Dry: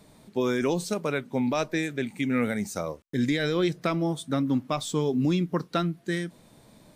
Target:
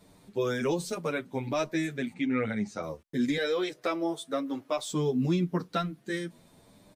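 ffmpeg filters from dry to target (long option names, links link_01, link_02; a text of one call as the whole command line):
ffmpeg -i in.wav -filter_complex "[0:a]asettb=1/sr,asplit=3[link_01][link_02][link_03];[link_01]atrim=end=2.134[link_04];[link_02]atrim=start=2.13:end=2.83,asetpts=PTS-STARTPTS,afade=type=in:duration=0.004:curve=qsin,afade=type=out:start_time=0.696:duration=0.004:curve=qsin,lowpass=4200[link_05];[link_03]atrim=start=2.826[link_06];[link_04][link_05]acrossfade=duration=0.004:curve1=hsin:curve2=qsin[link_07];[link_07][link_06]acrossfade=duration=0.004:curve1=qsin:curve2=hsin,asettb=1/sr,asplit=3[link_08][link_09][link_10];[link_08]atrim=end=3.374[link_11];[link_09]atrim=start=3.37:end=4.91,asetpts=PTS-STARTPTS,afade=type=in:duration=0.004:curve=qsin,afade=type=out:start_time=1.536:duration=0.004:curve=qsin,lowshelf=frequency=280:width_type=q:width=1.5:gain=-13[link_12];[link_10]atrim=start=4.906[link_13];[link_11][link_12]acrossfade=duration=0.004:curve1=hsin:curve2=qsin[link_14];[link_14][link_13]acrossfade=duration=0.004:curve1=qsin:curve2=hsin,asplit=2[link_15][link_16];[link_16]adelay=8.5,afreqshift=0.91[link_17];[link_15][link_17]amix=inputs=2:normalize=1" out.wav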